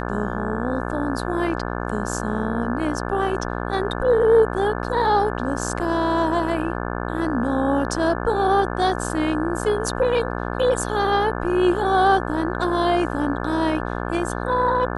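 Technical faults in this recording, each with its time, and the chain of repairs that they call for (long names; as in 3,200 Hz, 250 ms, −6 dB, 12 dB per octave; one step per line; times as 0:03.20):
mains buzz 60 Hz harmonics 29 −27 dBFS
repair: hum removal 60 Hz, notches 29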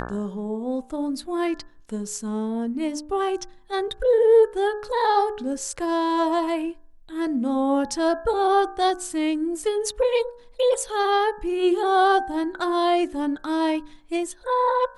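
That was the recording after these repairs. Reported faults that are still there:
none of them is left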